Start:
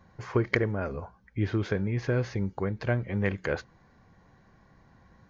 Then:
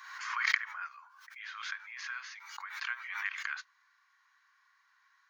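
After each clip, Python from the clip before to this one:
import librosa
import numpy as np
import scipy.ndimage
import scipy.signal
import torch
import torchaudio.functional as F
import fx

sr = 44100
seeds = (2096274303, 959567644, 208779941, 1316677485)

y = scipy.signal.sosfilt(scipy.signal.butter(8, 1100.0, 'highpass', fs=sr, output='sos'), x)
y = fx.pre_swell(y, sr, db_per_s=50.0)
y = y * 10.0 ** (-1.5 / 20.0)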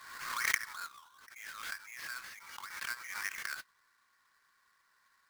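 y = fx.halfwave_hold(x, sr)
y = y * 10.0 ** (-5.5 / 20.0)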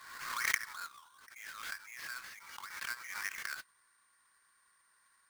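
y = x + 10.0 ** (-71.0 / 20.0) * np.sin(2.0 * np.pi * 8800.0 * np.arange(len(x)) / sr)
y = y * 10.0 ** (-1.0 / 20.0)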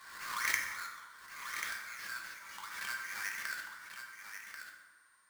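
y = x + 10.0 ** (-8.0 / 20.0) * np.pad(x, (int(1088 * sr / 1000.0), 0))[:len(x)]
y = fx.rev_fdn(y, sr, rt60_s=1.4, lf_ratio=0.9, hf_ratio=0.65, size_ms=30.0, drr_db=1.5)
y = y * 10.0 ** (-1.5 / 20.0)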